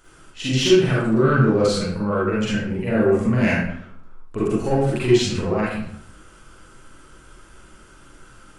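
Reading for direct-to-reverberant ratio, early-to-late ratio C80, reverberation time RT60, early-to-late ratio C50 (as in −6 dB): −9.0 dB, 3.5 dB, 0.65 s, −2.5 dB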